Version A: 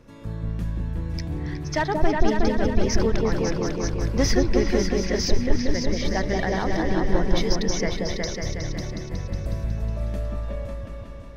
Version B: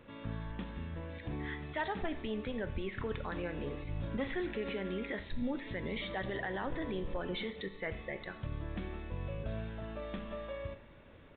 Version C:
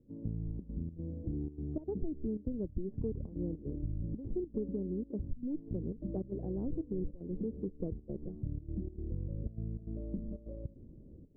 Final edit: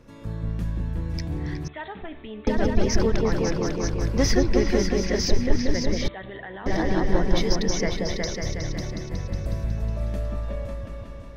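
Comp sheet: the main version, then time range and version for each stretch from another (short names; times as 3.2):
A
1.68–2.47 from B
6.08–6.66 from B
not used: C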